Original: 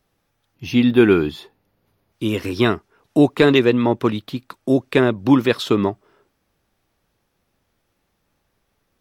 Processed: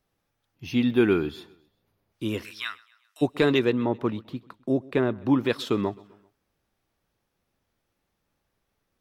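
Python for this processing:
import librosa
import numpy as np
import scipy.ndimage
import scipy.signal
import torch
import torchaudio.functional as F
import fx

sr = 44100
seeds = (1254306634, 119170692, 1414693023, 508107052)

y = fx.highpass(x, sr, hz=1400.0, slope=24, at=(2.43, 3.21), fade=0.02)
y = fx.high_shelf(y, sr, hz=2800.0, db=-11.0, at=(3.72, 5.46))
y = fx.echo_feedback(y, sr, ms=130, feedback_pct=51, wet_db=-23.5)
y = y * 10.0 ** (-7.5 / 20.0)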